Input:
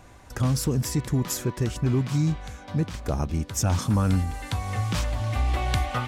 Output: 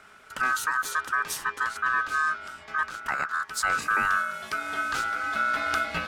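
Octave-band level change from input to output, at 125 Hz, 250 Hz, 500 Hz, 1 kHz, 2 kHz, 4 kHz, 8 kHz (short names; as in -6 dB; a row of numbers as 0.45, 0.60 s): -27.5, -18.0, -8.0, +7.5, +14.5, -1.0, -3.5 dB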